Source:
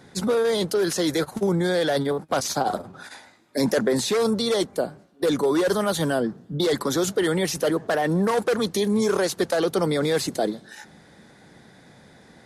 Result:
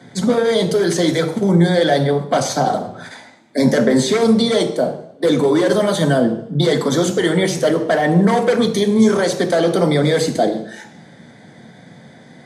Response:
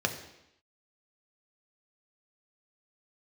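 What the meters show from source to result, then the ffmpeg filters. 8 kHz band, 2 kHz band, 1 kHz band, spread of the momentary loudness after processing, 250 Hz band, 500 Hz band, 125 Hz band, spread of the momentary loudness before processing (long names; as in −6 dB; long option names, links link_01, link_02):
+3.5 dB, +6.5 dB, +7.0 dB, 6 LU, +8.5 dB, +6.5 dB, +10.5 dB, 6 LU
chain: -filter_complex "[1:a]atrim=start_sample=2205,asetrate=57330,aresample=44100[link_01];[0:a][link_01]afir=irnorm=-1:irlink=0"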